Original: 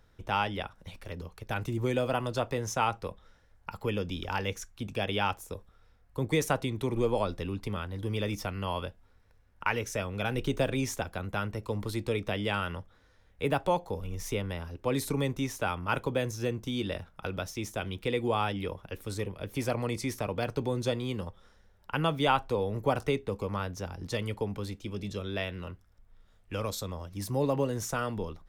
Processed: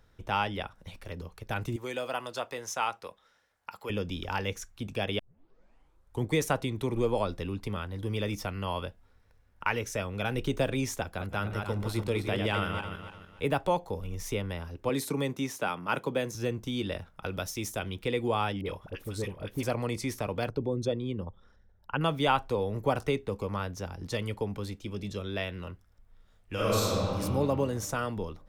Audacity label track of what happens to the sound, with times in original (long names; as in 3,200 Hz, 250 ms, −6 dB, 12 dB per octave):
1.760000	3.900000	high-pass filter 810 Hz 6 dB per octave
5.190000	5.190000	tape start 1.11 s
11.050000	13.420000	feedback delay that plays each chunk backwards 147 ms, feedback 53%, level −5 dB
14.890000	16.350000	high-pass filter 140 Hz 24 dB per octave
17.310000	17.790000	high-shelf EQ 5,800 Hz +8.5 dB
18.610000	19.630000	all-pass dispersion highs, late by 44 ms, half as late at 980 Hz
20.490000	22.010000	spectral envelope exaggerated exponent 1.5
26.530000	27.190000	thrown reverb, RT60 2.1 s, DRR −8 dB